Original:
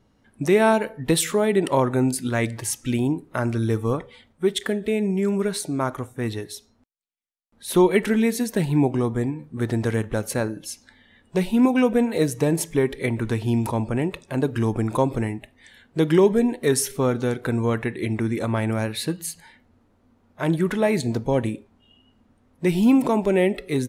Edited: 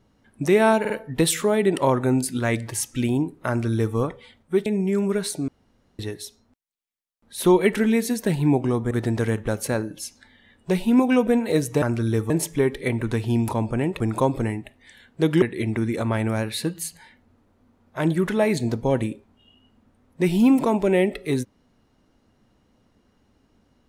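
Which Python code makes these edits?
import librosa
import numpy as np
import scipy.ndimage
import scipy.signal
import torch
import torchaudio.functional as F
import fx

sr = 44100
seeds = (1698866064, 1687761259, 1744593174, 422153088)

y = fx.edit(x, sr, fx.stutter(start_s=0.8, slice_s=0.05, count=3),
    fx.duplicate(start_s=3.38, length_s=0.48, to_s=12.48),
    fx.cut(start_s=4.56, length_s=0.4),
    fx.room_tone_fill(start_s=5.78, length_s=0.51),
    fx.cut(start_s=9.21, length_s=0.36),
    fx.cut(start_s=14.18, length_s=0.59),
    fx.cut(start_s=16.19, length_s=1.66), tone=tone)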